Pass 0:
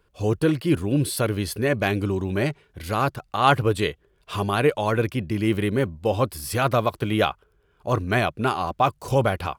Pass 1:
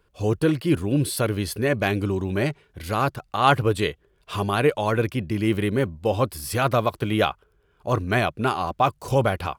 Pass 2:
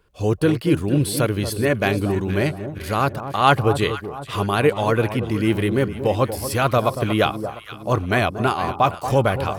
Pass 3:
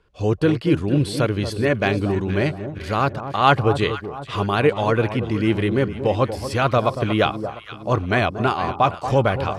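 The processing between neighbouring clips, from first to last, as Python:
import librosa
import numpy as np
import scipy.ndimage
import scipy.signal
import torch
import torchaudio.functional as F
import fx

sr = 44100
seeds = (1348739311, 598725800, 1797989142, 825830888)

y1 = x
y2 = fx.echo_alternate(y1, sr, ms=233, hz=1100.0, feedback_pct=63, wet_db=-9.5)
y2 = y2 * librosa.db_to_amplitude(2.5)
y3 = scipy.signal.sosfilt(scipy.signal.butter(2, 5900.0, 'lowpass', fs=sr, output='sos'), y2)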